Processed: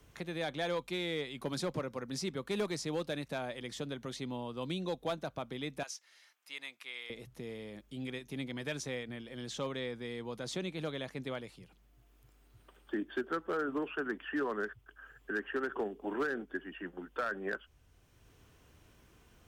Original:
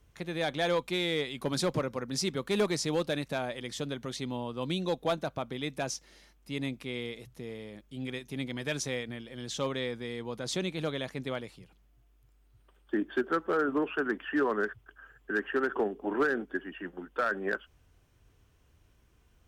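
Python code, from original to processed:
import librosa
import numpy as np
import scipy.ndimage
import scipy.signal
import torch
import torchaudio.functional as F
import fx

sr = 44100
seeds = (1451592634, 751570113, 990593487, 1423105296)

y = fx.highpass(x, sr, hz=1300.0, slope=12, at=(5.83, 7.1))
y = fx.band_squash(y, sr, depth_pct=40)
y = F.gain(torch.from_numpy(y), -5.5).numpy()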